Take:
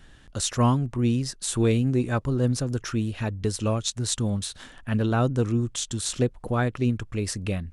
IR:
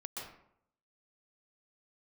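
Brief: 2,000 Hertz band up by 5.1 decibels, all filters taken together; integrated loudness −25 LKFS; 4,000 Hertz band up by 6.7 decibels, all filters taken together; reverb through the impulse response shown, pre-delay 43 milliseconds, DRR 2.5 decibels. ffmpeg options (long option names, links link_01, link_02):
-filter_complex "[0:a]equalizer=frequency=2000:width_type=o:gain=5.5,equalizer=frequency=4000:width_type=o:gain=6.5,asplit=2[link_01][link_02];[1:a]atrim=start_sample=2205,adelay=43[link_03];[link_02][link_03]afir=irnorm=-1:irlink=0,volume=-2dB[link_04];[link_01][link_04]amix=inputs=2:normalize=0,volume=-2dB"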